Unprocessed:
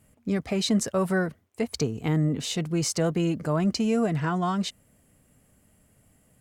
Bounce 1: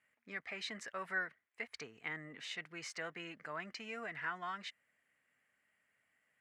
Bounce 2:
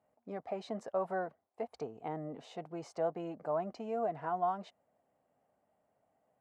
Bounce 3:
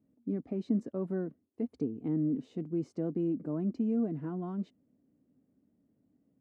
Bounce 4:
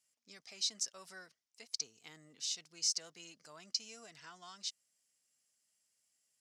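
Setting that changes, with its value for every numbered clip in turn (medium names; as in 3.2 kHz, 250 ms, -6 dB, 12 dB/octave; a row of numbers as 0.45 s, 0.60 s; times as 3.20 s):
band-pass filter, frequency: 1.9 kHz, 740 Hz, 280 Hz, 5.4 kHz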